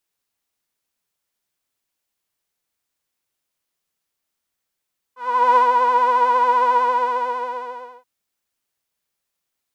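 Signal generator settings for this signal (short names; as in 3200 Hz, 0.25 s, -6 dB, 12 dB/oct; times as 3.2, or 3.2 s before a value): synth patch with vibrato B4, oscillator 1 saw, oscillator 2 saw, detune 26 cents, sub -16 dB, filter bandpass, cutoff 810 Hz, Q 5.7, filter envelope 0.5 oct, attack 0.398 s, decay 0.13 s, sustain -3.5 dB, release 1.30 s, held 1.58 s, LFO 11 Hz, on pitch 49 cents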